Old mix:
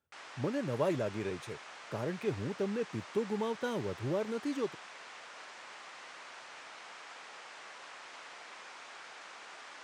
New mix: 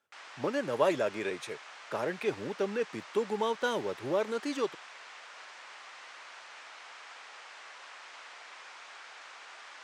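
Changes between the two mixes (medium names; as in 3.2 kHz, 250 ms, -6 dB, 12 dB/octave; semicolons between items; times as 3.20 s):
speech +7.5 dB; master: add frequency weighting A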